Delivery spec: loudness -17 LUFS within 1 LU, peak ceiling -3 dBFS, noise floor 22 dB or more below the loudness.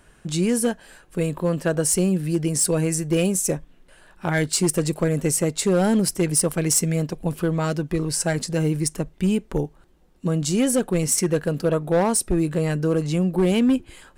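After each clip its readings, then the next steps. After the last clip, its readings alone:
clipped 0.9%; flat tops at -13.5 dBFS; loudness -22.0 LUFS; peak -13.5 dBFS; loudness target -17.0 LUFS
-> clip repair -13.5 dBFS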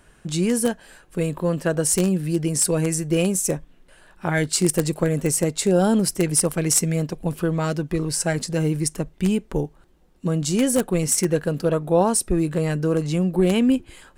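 clipped 0.0%; loudness -22.0 LUFS; peak -4.5 dBFS; loudness target -17.0 LUFS
-> gain +5 dB; limiter -3 dBFS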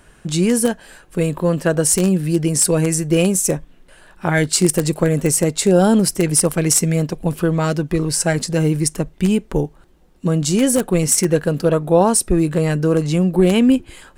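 loudness -17.0 LUFS; peak -3.0 dBFS; noise floor -49 dBFS

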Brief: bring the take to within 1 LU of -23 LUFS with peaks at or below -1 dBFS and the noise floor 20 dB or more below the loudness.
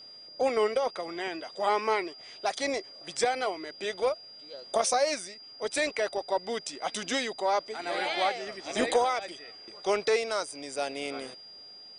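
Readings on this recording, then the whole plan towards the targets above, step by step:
steady tone 4800 Hz; tone level -46 dBFS; loudness -30.0 LUFS; peak -13.0 dBFS; loudness target -23.0 LUFS
-> notch 4800 Hz, Q 30; gain +7 dB

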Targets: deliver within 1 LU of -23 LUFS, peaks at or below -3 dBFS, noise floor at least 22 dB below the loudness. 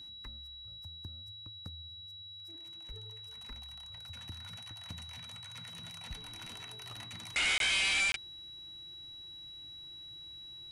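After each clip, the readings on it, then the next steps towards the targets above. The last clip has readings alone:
dropouts 2; longest dropout 22 ms; steady tone 3900 Hz; tone level -46 dBFS; loudness -37.5 LUFS; peak -23.0 dBFS; loudness target -23.0 LUFS
-> interpolate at 7.58/8.12, 22 ms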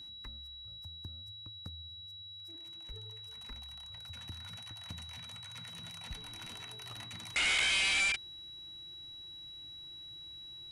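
dropouts 0; steady tone 3900 Hz; tone level -46 dBFS
-> notch 3900 Hz, Q 30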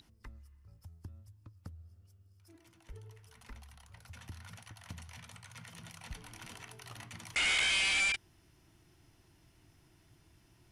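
steady tone none; loudness -29.0 LUFS; peak -18.5 dBFS; loudness target -23.0 LUFS
-> gain +6 dB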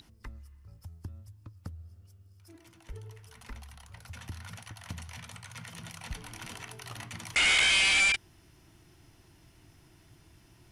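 loudness -23.0 LUFS; peak -12.5 dBFS; noise floor -60 dBFS

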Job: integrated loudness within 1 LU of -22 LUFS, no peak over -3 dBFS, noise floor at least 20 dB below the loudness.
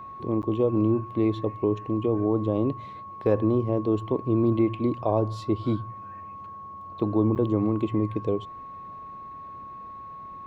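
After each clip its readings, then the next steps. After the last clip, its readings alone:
dropouts 2; longest dropout 9.4 ms; steady tone 1100 Hz; tone level -38 dBFS; loudness -25.5 LUFS; peak -10.0 dBFS; loudness target -22.0 LUFS
-> interpolate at 0.42/7.35, 9.4 ms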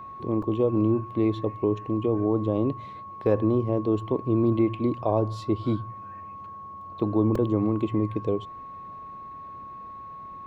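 dropouts 0; steady tone 1100 Hz; tone level -38 dBFS
-> notch 1100 Hz, Q 30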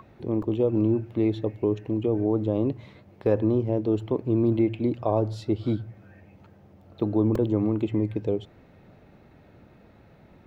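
steady tone none; loudness -26.0 LUFS; peak -10.0 dBFS; loudness target -22.0 LUFS
-> gain +4 dB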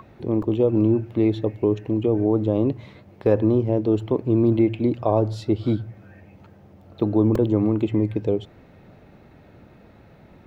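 loudness -22.0 LUFS; peak -6.0 dBFS; noise floor -51 dBFS

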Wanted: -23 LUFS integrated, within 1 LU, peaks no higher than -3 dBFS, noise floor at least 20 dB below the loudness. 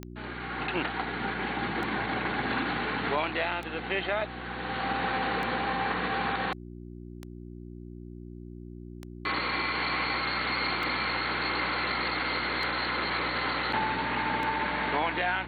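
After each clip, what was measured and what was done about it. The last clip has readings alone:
clicks 9; hum 60 Hz; harmonics up to 360 Hz; hum level -40 dBFS; loudness -29.5 LUFS; peak -15.0 dBFS; loudness target -23.0 LUFS
-> de-click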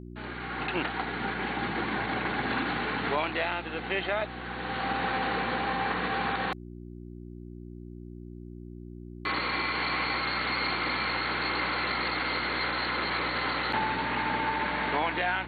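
clicks 0; hum 60 Hz; harmonics up to 360 Hz; hum level -40 dBFS
-> de-hum 60 Hz, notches 6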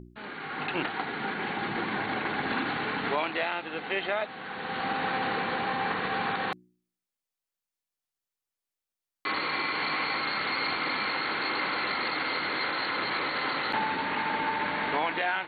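hum none; loudness -29.5 LUFS; peak -15.5 dBFS; loudness target -23.0 LUFS
-> gain +6.5 dB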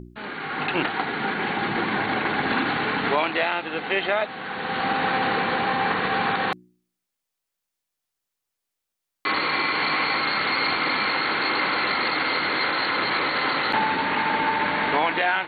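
loudness -23.0 LUFS; peak -9.0 dBFS; noise floor -83 dBFS

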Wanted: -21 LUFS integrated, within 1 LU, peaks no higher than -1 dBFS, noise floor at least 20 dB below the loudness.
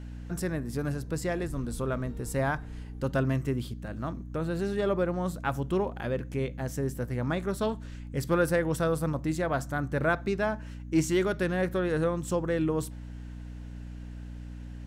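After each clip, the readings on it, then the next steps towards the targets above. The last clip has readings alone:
hum 60 Hz; harmonics up to 300 Hz; hum level -38 dBFS; loudness -30.5 LUFS; peak -12.5 dBFS; loudness target -21.0 LUFS
-> de-hum 60 Hz, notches 5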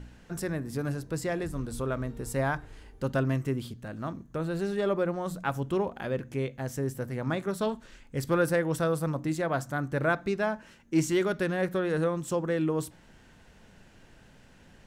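hum none; loudness -30.5 LUFS; peak -14.0 dBFS; loudness target -21.0 LUFS
-> gain +9.5 dB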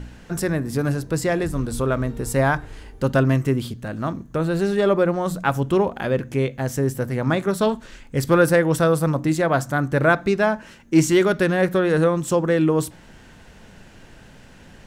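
loudness -21.0 LUFS; peak -4.5 dBFS; noise floor -47 dBFS

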